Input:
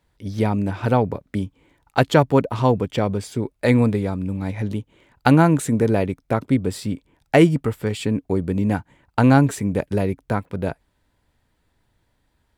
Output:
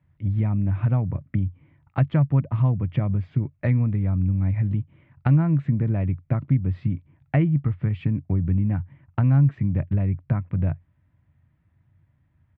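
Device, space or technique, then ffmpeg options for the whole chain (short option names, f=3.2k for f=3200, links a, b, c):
bass amplifier: -af "firequalizer=gain_entry='entry(140,0);entry(410,-20);entry(940,-7)':delay=0.05:min_phase=1,acompressor=threshold=-29dB:ratio=3,highpass=85,equalizer=f=89:t=q:w=4:g=10,equalizer=f=140:t=q:w=4:g=8,equalizer=f=330:t=q:w=4:g=6,equalizer=f=610:t=q:w=4:g=6,equalizer=f=900:t=q:w=4:g=-7,equalizer=f=1.5k:t=q:w=4:g=-5,lowpass=f=2.3k:w=0.5412,lowpass=f=2.3k:w=1.3066,volume=5dB"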